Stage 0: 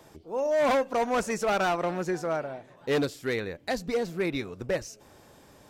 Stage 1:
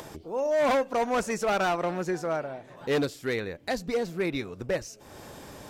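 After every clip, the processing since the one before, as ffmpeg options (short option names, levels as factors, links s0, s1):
-af "acompressor=mode=upward:threshold=0.02:ratio=2.5"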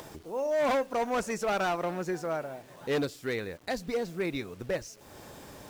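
-af "acrusher=bits=8:mix=0:aa=0.000001,volume=0.708"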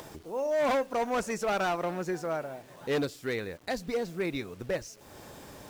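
-af anull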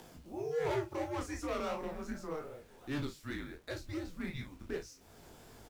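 -filter_complex "[0:a]asplit=2[s0][s1];[s1]adelay=37,volume=0.398[s2];[s0][s2]amix=inputs=2:normalize=0,flanger=delay=17.5:depth=7:speed=2.7,afreqshift=-150,volume=0.531"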